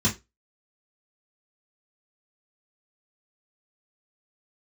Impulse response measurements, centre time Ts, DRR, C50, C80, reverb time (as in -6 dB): 18 ms, -6.5 dB, 14.0 dB, 22.5 dB, 0.25 s